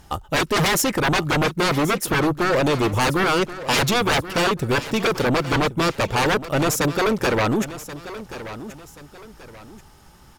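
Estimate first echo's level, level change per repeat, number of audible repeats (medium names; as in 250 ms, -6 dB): -14.0 dB, -9.0 dB, 2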